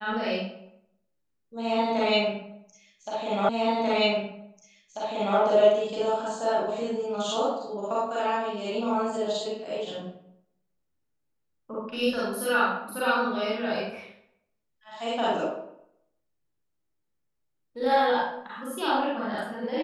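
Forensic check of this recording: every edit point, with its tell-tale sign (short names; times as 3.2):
3.49 repeat of the last 1.89 s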